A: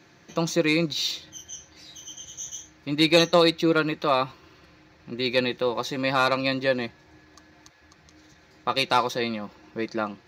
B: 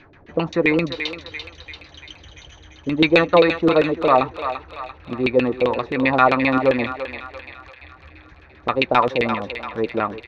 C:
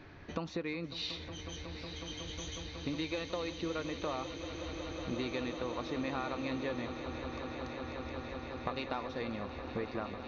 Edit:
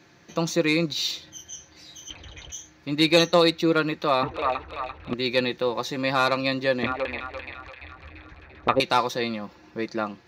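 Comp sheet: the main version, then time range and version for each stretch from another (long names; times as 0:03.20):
A
0:02.10–0:02.52: punch in from B
0:04.23–0:05.14: punch in from B
0:06.83–0:08.80: punch in from B
not used: C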